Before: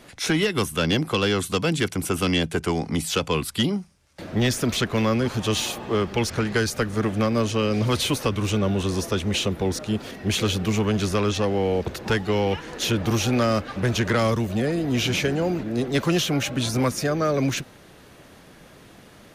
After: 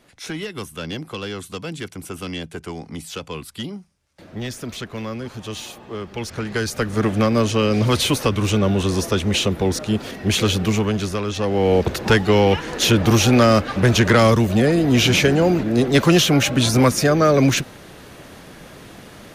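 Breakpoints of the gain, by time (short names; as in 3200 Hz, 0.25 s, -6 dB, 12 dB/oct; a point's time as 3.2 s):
5.99 s -7.5 dB
7.04 s +4.5 dB
10.65 s +4.5 dB
11.26 s -2.5 dB
11.74 s +7.5 dB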